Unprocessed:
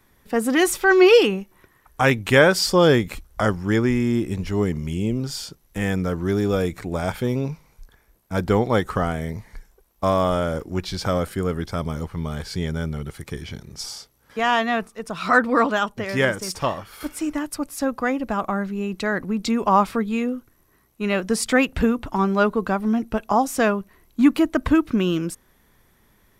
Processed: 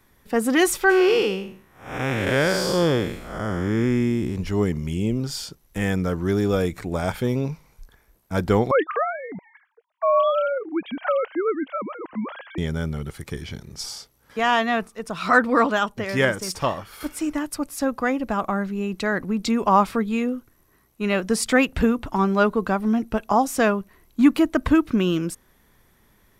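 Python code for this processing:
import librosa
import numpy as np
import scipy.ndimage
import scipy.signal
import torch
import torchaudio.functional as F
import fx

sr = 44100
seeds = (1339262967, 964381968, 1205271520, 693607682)

y = fx.spec_blur(x, sr, span_ms=253.0, at=(0.89, 4.35), fade=0.02)
y = fx.sine_speech(y, sr, at=(8.71, 12.58))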